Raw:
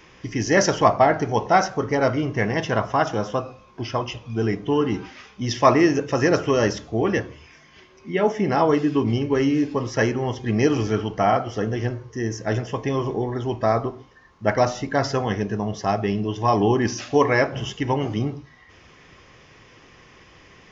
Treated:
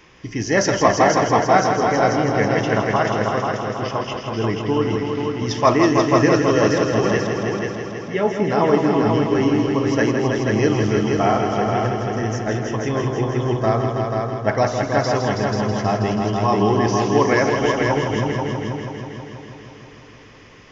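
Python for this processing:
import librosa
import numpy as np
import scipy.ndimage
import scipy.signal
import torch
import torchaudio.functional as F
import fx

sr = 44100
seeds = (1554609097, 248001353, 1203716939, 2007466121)

y = fx.echo_heads(x, sr, ms=162, heads='all three', feedback_pct=56, wet_db=-7)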